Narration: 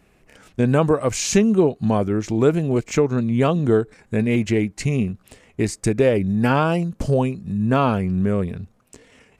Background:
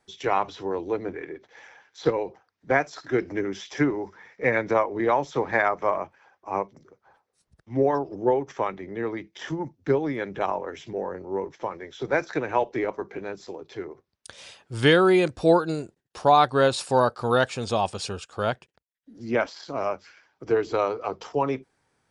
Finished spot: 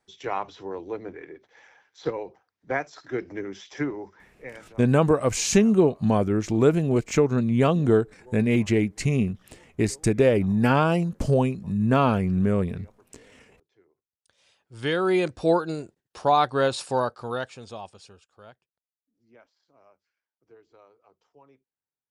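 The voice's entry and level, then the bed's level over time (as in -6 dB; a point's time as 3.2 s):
4.20 s, -2.0 dB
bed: 4.21 s -5.5 dB
4.72 s -28 dB
14.02 s -28 dB
15.16 s -2.5 dB
16.86 s -2.5 dB
19.1 s -31 dB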